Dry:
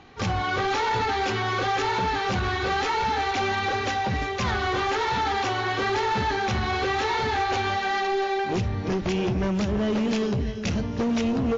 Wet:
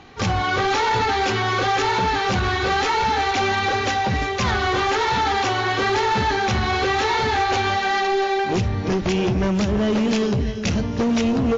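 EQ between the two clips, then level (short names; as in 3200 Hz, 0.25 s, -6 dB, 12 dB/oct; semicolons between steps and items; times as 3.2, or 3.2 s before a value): high shelf 6000 Hz +4 dB; +4.5 dB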